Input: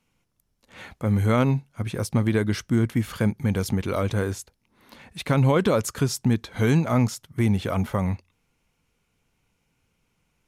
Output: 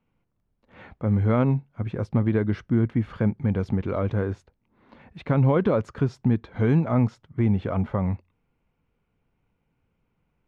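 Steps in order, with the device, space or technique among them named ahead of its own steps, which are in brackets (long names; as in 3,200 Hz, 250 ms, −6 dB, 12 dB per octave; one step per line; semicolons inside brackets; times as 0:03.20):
phone in a pocket (low-pass filter 3,200 Hz 12 dB per octave; high-shelf EQ 2,000 Hz −12 dB)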